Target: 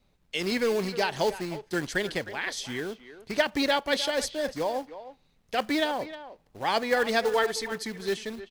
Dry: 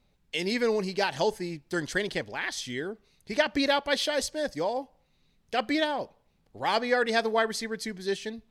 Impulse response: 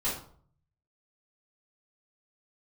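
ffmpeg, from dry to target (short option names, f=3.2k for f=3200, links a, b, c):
-filter_complex "[0:a]asettb=1/sr,asplit=3[a][b][c];[a]atrim=end=7.244[d];[b]atrim=start=7.24:end=7.72,asetpts=PTS-STARTPTS,afade=t=in:d=0.004:c=qsin,afade=t=out:st=0.476:d=0.004:c=qsin,aecho=1:1:2.3:0.53,atrim=end_sample=21168[e];[c]atrim=start=7.716[f];[d][e]acrossfade=d=0.004:c1=hsin:c2=qsin[g];[g][f]acrossfade=d=0.004:c1=qsin:c2=hsin,acrossover=split=500|3000[h][i][j];[h]acrusher=bits=2:mode=log:mix=0:aa=0.000001[k];[k][i][j]amix=inputs=3:normalize=0,asplit=2[l][m];[m]adelay=310,highpass=300,lowpass=3.4k,asoftclip=type=hard:threshold=-19.5dB,volume=-13dB[n];[l][n]amix=inputs=2:normalize=0"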